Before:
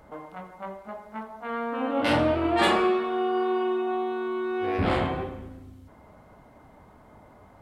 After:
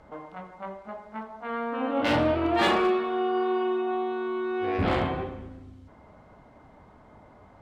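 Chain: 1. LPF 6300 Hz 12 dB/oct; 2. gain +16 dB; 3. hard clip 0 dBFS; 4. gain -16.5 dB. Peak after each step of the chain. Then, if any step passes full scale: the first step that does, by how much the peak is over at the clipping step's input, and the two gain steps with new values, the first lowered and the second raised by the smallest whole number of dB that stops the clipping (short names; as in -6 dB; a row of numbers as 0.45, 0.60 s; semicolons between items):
-9.5, +6.5, 0.0, -16.5 dBFS; step 2, 6.5 dB; step 2 +9 dB, step 4 -9.5 dB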